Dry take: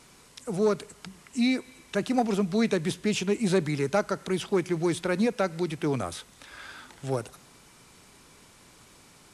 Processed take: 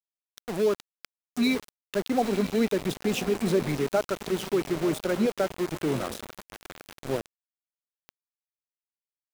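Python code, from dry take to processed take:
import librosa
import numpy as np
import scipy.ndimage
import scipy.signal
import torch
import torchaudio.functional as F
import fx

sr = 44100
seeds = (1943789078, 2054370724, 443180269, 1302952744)

y = fx.envelope_sharpen(x, sr, power=1.5)
y = fx.echo_diffused(y, sr, ms=971, feedback_pct=45, wet_db=-11)
y = np.where(np.abs(y) >= 10.0 ** (-30.0 / 20.0), y, 0.0)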